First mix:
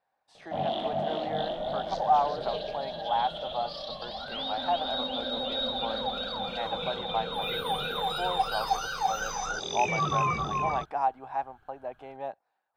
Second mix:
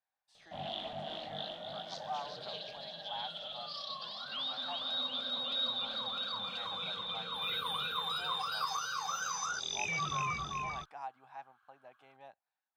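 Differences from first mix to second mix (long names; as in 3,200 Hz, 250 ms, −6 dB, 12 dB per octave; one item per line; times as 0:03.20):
first sound +5.5 dB
second sound: add high-pass with resonance 1,100 Hz, resonance Q 8.5
master: add guitar amp tone stack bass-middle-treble 5-5-5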